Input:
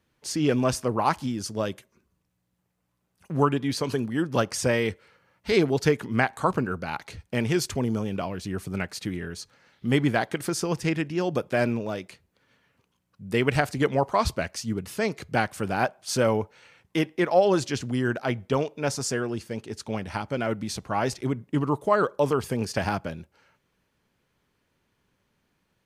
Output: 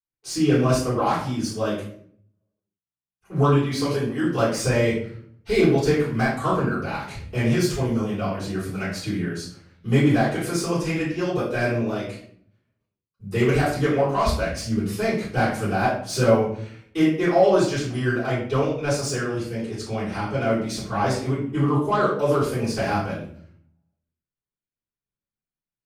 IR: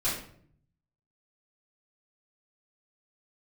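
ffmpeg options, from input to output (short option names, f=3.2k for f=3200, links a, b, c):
-filter_complex "[0:a]acrossover=split=790[a][b];[a]adynamicequalizer=threshold=0.0126:dfrequency=160:dqfactor=0.71:tfrequency=160:tqfactor=0.71:attack=5:release=100:ratio=0.375:range=3:mode=cutabove:tftype=bell[c];[b]asoftclip=type=tanh:threshold=-24.5dB[d];[c][d]amix=inputs=2:normalize=0,agate=range=-33dB:threshold=-53dB:ratio=3:detection=peak[e];[1:a]atrim=start_sample=2205[f];[e][f]afir=irnorm=-1:irlink=0,volume=-4dB"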